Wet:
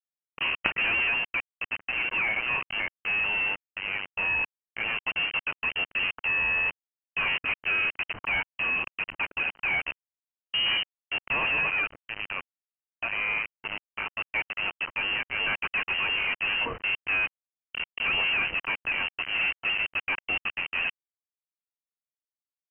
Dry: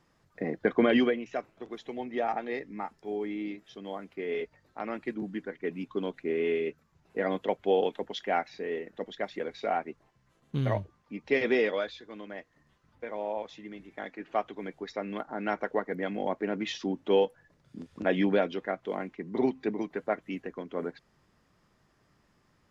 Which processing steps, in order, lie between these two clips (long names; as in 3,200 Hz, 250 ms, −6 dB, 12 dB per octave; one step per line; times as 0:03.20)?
log-companded quantiser 2 bits
voice inversion scrambler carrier 3,000 Hz